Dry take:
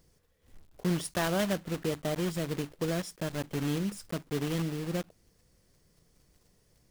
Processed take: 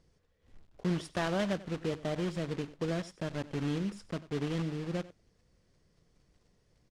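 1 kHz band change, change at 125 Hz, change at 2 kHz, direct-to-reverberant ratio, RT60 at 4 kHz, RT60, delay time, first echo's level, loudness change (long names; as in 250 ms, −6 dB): −2.5 dB, −2.0 dB, −2.5 dB, no reverb audible, no reverb audible, no reverb audible, 93 ms, −17.5 dB, −2.5 dB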